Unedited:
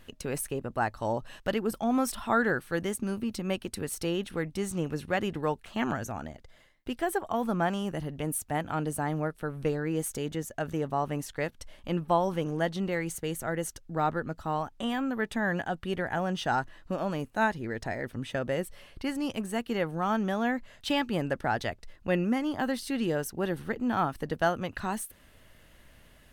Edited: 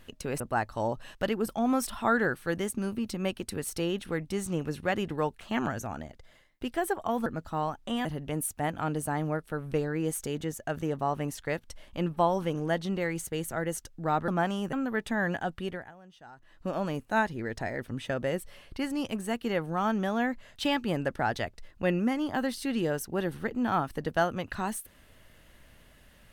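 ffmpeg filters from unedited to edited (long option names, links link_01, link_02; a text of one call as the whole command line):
ffmpeg -i in.wav -filter_complex "[0:a]asplit=8[link_01][link_02][link_03][link_04][link_05][link_06][link_07][link_08];[link_01]atrim=end=0.402[link_09];[link_02]atrim=start=0.648:end=7.512[link_10];[link_03]atrim=start=14.188:end=14.982[link_11];[link_04]atrim=start=7.958:end=14.192[link_12];[link_05]atrim=start=7.508:end=7.962[link_13];[link_06]atrim=start=14.978:end=16.17,asetpts=PTS-STARTPTS,afade=type=out:start_time=0.832:duration=0.36:silence=0.0749894[link_14];[link_07]atrim=start=16.17:end=16.61,asetpts=PTS-STARTPTS,volume=-22.5dB[link_15];[link_08]atrim=start=16.61,asetpts=PTS-STARTPTS,afade=type=in:duration=0.36:silence=0.0749894[link_16];[link_09][link_10]acrossfade=duration=0.004:curve1=hsin:curve2=hsin[link_17];[link_17][link_11]acrossfade=duration=0.004:curve1=hsin:curve2=hsin[link_18];[link_18][link_12]acrossfade=duration=0.004:curve1=hsin:curve2=hsin[link_19];[link_19][link_13]acrossfade=duration=0.004:curve1=hsin:curve2=hsin[link_20];[link_14][link_15][link_16]concat=n=3:v=0:a=1[link_21];[link_20][link_21]acrossfade=duration=0.004:curve1=hsin:curve2=hsin" out.wav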